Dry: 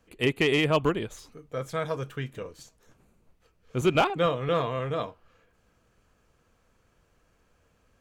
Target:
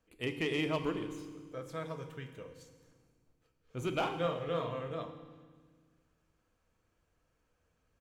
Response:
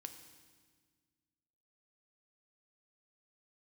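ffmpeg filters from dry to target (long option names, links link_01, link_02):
-filter_complex "[0:a]asplit=3[link_01][link_02][link_03];[link_01]afade=type=out:start_time=4.03:duration=0.02[link_04];[link_02]asplit=2[link_05][link_06];[link_06]adelay=42,volume=-6dB[link_07];[link_05][link_07]amix=inputs=2:normalize=0,afade=type=in:start_time=4.03:duration=0.02,afade=type=out:start_time=4.78:duration=0.02[link_08];[link_03]afade=type=in:start_time=4.78:duration=0.02[link_09];[link_04][link_08][link_09]amix=inputs=3:normalize=0[link_10];[1:a]atrim=start_sample=2205[link_11];[link_10][link_11]afir=irnorm=-1:irlink=0,volume=-5.5dB"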